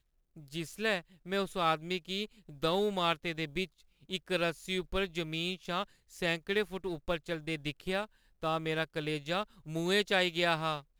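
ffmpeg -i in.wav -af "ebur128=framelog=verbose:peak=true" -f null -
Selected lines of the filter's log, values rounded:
Integrated loudness:
  I:         -33.8 LUFS
  Threshold: -44.0 LUFS
Loudness range:
  LRA:         2.8 LU
  Threshold: -54.4 LUFS
  LRA low:   -35.7 LUFS
  LRA high:  -32.9 LUFS
True peak:
  Peak:      -15.4 dBFS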